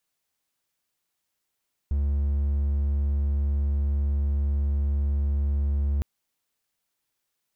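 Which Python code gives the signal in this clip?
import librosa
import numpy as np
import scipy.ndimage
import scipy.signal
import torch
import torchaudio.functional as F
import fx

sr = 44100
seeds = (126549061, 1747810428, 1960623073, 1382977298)

y = 10.0 ** (-19.5 / 20.0) * (1.0 - 4.0 * np.abs(np.mod(71.0 * (np.arange(round(4.11 * sr)) / sr) + 0.25, 1.0) - 0.5))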